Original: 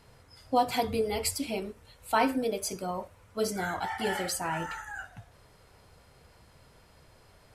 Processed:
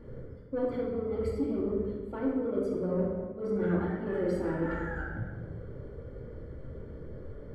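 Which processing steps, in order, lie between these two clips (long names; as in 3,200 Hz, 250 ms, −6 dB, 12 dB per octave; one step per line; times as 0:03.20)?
low shelf with overshoot 600 Hz +9 dB, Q 3
reversed playback
downward compressor 8 to 1, threshold −31 dBFS, peak gain reduction 21 dB
reversed playback
Savitzky-Golay smoothing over 41 samples
soft clipping −26.5 dBFS, distortion −20 dB
rectangular room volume 1,300 cubic metres, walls mixed, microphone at 2.4 metres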